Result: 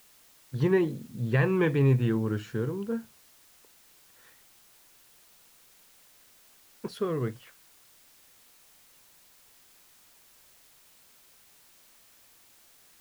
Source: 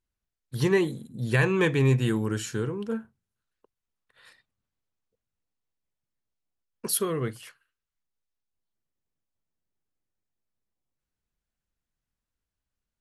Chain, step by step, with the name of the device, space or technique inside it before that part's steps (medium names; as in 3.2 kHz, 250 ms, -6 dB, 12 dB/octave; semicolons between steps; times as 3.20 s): cassette deck with a dirty head (tape spacing loss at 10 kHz 28 dB; wow and flutter; white noise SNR 26 dB)